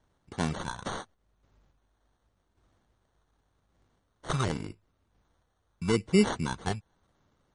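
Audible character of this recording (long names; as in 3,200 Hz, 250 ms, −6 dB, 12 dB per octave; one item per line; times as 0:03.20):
sample-and-hold tremolo
phaser sweep stages 2, 0.85 Hz, lowest notch 290–1,700 Hz
aliases and images of a low sample rate 2,500 Hz, jitter 0%
MP3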